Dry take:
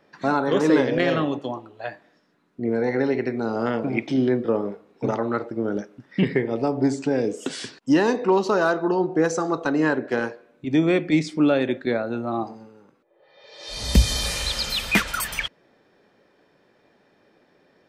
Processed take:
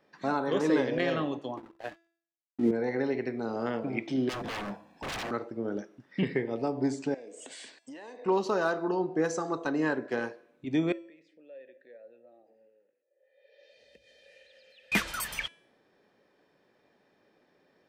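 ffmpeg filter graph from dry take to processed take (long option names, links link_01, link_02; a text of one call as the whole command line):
ffmpeg -i in.wav -filter_complex "[0:a]asettb=1/sr,asplit=3[link_01][link_02][link_03];[link_01]atrim=end=1.574[link_04];[link_02]atrim=start=1.57:end=2.71,asetpts=PTS-STARTPTS,afade=type=in:duration=0.004:curve=qsin,afade=type=out:start_time=1.136:duration=0.004:curve=qsin,equalizer=frequency=280:width_type=o:width=0.81:gain=14.5,acompressor=mode=upward:threshold=-37dB:ratio=2.5:attack=3.2:release=140:knee=2.83:detection=peak,aeval=exprs='sgn(val(0))*max(abs(val(0))-0.0126,0)':channel_layout=same[link_05];[link_03]atrim=start=2.706[link_06];[link_04][link_05]acrossfade=duration=0.004:curve1=hsin:curve2=qsin[link_07];[link_07][link_06]acrossfade=duration=0.004:curve1=qsin:curve2=hsin,asettb=1/sr,asplit=3[link_08][link_09][link_10];[link_08]atrim=end=4.294[link_11];[link_09]atrim=start=4.29:end=5.31,asetpts=PTS-STARTPTS,afade=type=in:duration=0.004:curve=qsin,afade=type=out:start_time=1.016:duration=0.004:curve=qsin,aecho=1:1:1.2:0.96,atrim=end_sample=44982,acontrast=57,aeval=exprs='0.0668*(abs(mod(val(0)/0.0668+3,4)-2)-1)':channel_layout=same[link_12];[link_10]atrim=start=5.306[link_13];[link_11][link_12]acrossfade=duration=0.004:curve1=hsin:curve2=qsin[link_14];[link_14][link_13]acrossfade=duration=0.004:curve1=qsin:curve2=hsin,asettb=1/sr,asplit=3[link_15][link_16][link_17];[link_15]atrim=end=7.144[link_18];[link_16]atrim=start=7.14:end=8.26,asetpts=PTS-STARTPTS,afade=type=in:duration=0.004:curve=qsin,afade=type=out:start_time=1.116:duration=0.004:curve=qsin,highpass=370,equalizer=frequency=390:width_type=q:width=4:gain=-6,equalizer=frequency=620:width_type=q:width=4:gain=5,equalizer=frequency=1300:width_type=q:width=4:gain=-7,equalizer=frequency=2100:width_type=q:width=4:gain=4,equalizer=frequency=5400:width_type=q:width=4:gain=-7,equalizer=frequency=8400:width_type=q:width=4:gain=8,lowpass=frequency=9000:width=0.5412,lowpass=frequency=9000:width=1.3066,acompressor=threshold=-34dB:ratio=12:attack=3.2:release=140:knee=1:detection=peak[link_19];[link_17]atrim=start=8.256[link_20];[link_18][link_19]acrossfade=duration=0.004:curve1=hsin:curve2=qsin[link_21];[link_21][link_20]acrossfade=duration=0.004:curve1=qsin:curve2=hsin,asettb=1/sr,asplit=3[link_22][link_23][link_24];[link_22]atrim=end=10.924[link_25];[link_23]atrim=start=10.92:end=14.92,asetpts=PTS-STARTPTS,afade=type=in:duration=0.004:curve=qsin,afade=type=out:start_time=3.996:duration=0.004:curve=qsin,acompressor=threshold=-38dB:ratio=2.5:attack=3.2:release=140:knee=1:detection=peak,asplit=3[link_26][link_27][link_28];[link_26]bandpass=frequency=530:width_type=q:width=8,volume=0dB[link_29];[link_27]bandpass=frequency=1840:width_type=q:width=8,volume=-6dB[link_30];[link_28]bandpass=frequency=2480:width_type=q:width=8,volume=-9dB[link_31];[link_29][link_30][link_31]amix=inputs=3:normalize=0[link_32];[link_24]atrim=start=14.916[link_33];[link_25][link_32]acrossfade=duration=0.004:curve1=hsin:curve2=qsin[link_34];[link_34][link_33]acrossfade=duration=0.004:curve1=qsin:curve2=hsin,lowshelf=frequency=130:gain=-4,bandreject=frequency=1400:width=25,bandreject=frequency=335.5:width_type=h:width=4,bandreject=frequency=671:width_type=h:width=4,bandreject=frequency=1006.5:width_type=h:width=4,bandreject=frequency=1342:width_type=h:width=4,bandreject=frequency=1677.5:width_type=h:width=4,bandreject=frequency=2013:width_type=h:width=4,bandreject=frequency=2348.5:width_type=h:width=4,bandreject=frequency=2684:width_type=h:width=4,bandreject=frequency=3019.5:width_type=h:width=4,bandreject=frequency=3355:width_type=h:width=4,bandreject=frequency=3690.5:width_type=h:width=4,bandreject=frequency=4026:width_type=h:width=4,bandreject=frequency=4361.5:width_type=h:width=4,bandreject=frequency=4697:width_type=h:width=4,bandreject=frequency=5032.5:width_type=h:width=4,bandreject=frequency=5368:width_type=h:width=4,bandreject=frequency=5703.5:width_type=h:width=4,bandreject=frequency=6039:width_type=h:width=4,bandreject=frequency=6374.5:width_type=h:width=4,bandreject=frequency=6710:width_type=h:width=4,bandreject=frequency=7045.5:width_type=h:width=4,bandreject=frequency=7381:width_type=h:width=4,bandreject=frequency=7716.5:width_type=h:width=4,bandreject=frequency=8052:width_type=h:width=4,bandreject=frequency=8387.5:width_type=h:width=4,bandreject=frequency=8723:width_type=h:width=4,bandreject=frequency=9058.5:width_type=h:width=4,bandreject=frequency=9394:width_type=h:width=4,bandreject=frequency=9729.5:width_type=h:width=4,bandreject=frequency=10065:width_type=h:width=4,volume=-7dB" out.wav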